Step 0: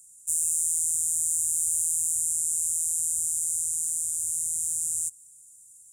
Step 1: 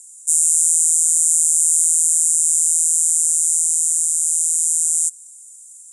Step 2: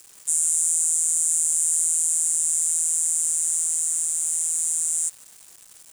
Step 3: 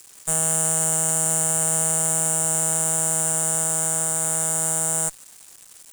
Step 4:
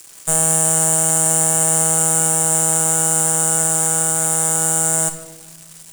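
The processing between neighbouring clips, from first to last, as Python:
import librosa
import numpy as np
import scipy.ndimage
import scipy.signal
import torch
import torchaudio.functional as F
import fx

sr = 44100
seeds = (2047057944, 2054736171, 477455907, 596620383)

y1 = fx.weighting(x, sr, curve='ITU-R 468')
y2 = fx.quant_dither(y1, sr, seeds[0], bits=6, dither='none')
y2 = F.gain(torch.from_numpy(y2), -6.0).numpy()
y3 = fx.tube_stage(y2, sr, drive_db=20.0, bias=0.75)
y3 = F.gain(torch.from_numpy(y3), 6.5).numpy()
y4 = fx.room_shoebox(y3, sr, seeds[1], volume_m3=690.0, walls='mixed', distance_m=0.71)
y4 = F.gain(torch.from_numpy(y4), 5.0).numpy()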